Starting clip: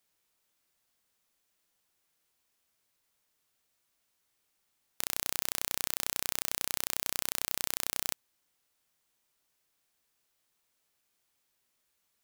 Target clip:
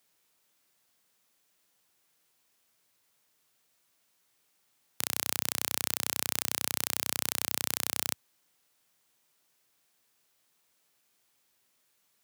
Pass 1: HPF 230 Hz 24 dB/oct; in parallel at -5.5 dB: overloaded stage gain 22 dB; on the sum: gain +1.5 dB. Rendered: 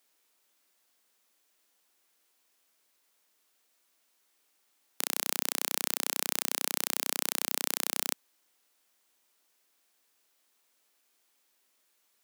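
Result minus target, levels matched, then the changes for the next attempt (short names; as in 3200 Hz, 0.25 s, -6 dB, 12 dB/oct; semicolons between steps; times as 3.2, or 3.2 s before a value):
125 Hz band -9.0 dB
change: HPF 92 Hz 24 dB/oct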